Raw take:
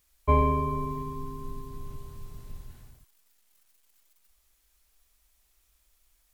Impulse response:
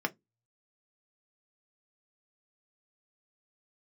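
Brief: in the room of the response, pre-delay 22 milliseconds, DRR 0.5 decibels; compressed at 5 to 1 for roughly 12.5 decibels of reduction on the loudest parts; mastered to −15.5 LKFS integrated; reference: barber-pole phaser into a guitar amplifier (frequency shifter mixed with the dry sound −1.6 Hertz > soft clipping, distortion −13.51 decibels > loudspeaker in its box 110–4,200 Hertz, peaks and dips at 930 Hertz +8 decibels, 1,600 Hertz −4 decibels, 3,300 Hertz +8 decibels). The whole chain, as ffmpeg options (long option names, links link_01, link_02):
-filter_complex "[0:a]acompressor=threshold=-31dB:ratio=5,asplit=2[link_01][link_02];[1:a]atrim=start_sample=2205,adelay=22[link_03];[link_02][link_03]afir=irnorm=-1:irlink=0,volume=-7dB[link_04];[link_01][link_04]amix=inputs=2:normalize=0,asplit=2[link_05][link_06];[link_06]afreqshift=-1.6[link_07];[link_05][link_07]amix=inputs=2:normalize=1,asoftclip=threshold=-33.5dB,highpass=110,equalizer=frequency=930:width_type=q:width=4:gain=8,equalizer=frequency=1600:width_type=q:width=4:gain=-4,equalizer=frequency=3300:width_type=q:width=4:gain=8,lowpass=frequency=4200:width=0.5412,lowpass=frequency=4200:width=1.3066,volume=25.5dB"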